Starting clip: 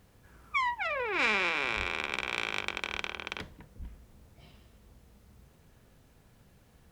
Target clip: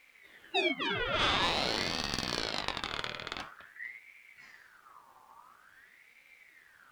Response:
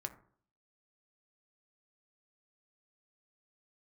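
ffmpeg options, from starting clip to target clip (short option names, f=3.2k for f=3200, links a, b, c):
-filter_complex "[0:a]asettb=1/sr,asplit=3[a][b][c];[a]atrim=end=1.424[d];[b]atrim=start=1.42:end=2.38,asetpts=PTS-STARTPTS,afade=t=in:d=0.004:c=qsin,afade=t=out:st=0.956:d=0.004:c=qsin,highshelf=f=8.8k:g=12[e];[c]atrim=start=2.376[f];[d][e]acrossfade=d=0.004:c1=hsin:c2=qsin[g];[g][f]acrossfade=d=0.004:c1=qsin:c2=hsin[h];[1:a]atrim=start_sample=2205,atrim=end_sample=3528[i];[h][i]afir=irnorm=-1:irlink=0,aeval=exprs='val(0)*sin(2*PI*1600*n/s+1600*0.4/0.48*sin(2*PI*0.48*n/s))':c=same,volume=4.5dB"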